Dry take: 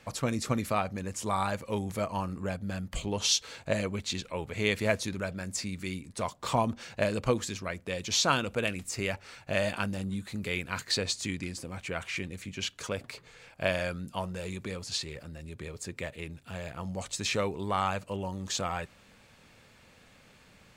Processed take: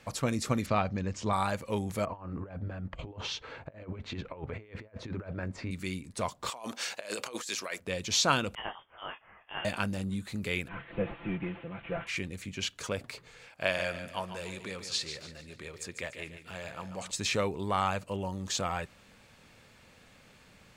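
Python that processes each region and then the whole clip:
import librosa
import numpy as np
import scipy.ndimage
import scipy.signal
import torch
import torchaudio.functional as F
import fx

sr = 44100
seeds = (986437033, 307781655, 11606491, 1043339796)

y = fx.chain(x, sr, fx.lowpass(hz=5900.0, slope=24),
    fx.low_shelf(hz=220.0, db=5.5), at=(0.66, 1.33))
y = fx.chain(y, sr, fx.lowpass(hz=1700.0, slope=12),
    fx.notch(hz=200.0, q=5.3),
    fx.over_compress(threshold_db=-39.0, ratio=-0.5), at=(2.05, 5.71))
y = fx.chain(y, sr, fx.highpass(hz=490.0, slope=12),
    fx.high_shelf(hz=3300.0, db=8.0),
    fx.over_compress(threshold_db=-39.0, ratio=-1.0), at=(6.5, 7.8))
y = fx.chain(y, sr, fx.highpass(hz=1400.0, slope=6),
    fx.freq_invert(carrier_hz=3400),
    fx.detune_double(cents=23), at=(8.55, 9.65))
y = fx.chain(y, sr, fx.delta_mod(bps=16000, step_db=-44.0),
    fx.comb(ms=5.9, depth=0.75),
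    fx.band_widen(depth_pct=70), at=(10.68, 12.07))
y = fx.chain(y, sr, fx.lowpass(hz=3100.0, slope=6),
    fx.tilt_eq(slope=2.5),
    fx.echo_feedback(ms=145, feedback_pct=41, wet_db=-10), at=(13.46, 17.11))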